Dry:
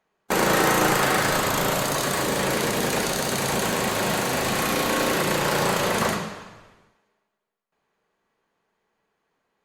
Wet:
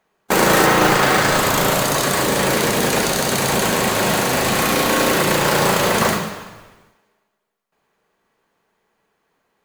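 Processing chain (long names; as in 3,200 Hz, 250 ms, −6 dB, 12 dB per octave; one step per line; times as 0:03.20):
0:00.66–0:01.36: low-pass filter 4,800 Hz → 9,100 Hz
noise that follows the level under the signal 15 dB
level +6 dB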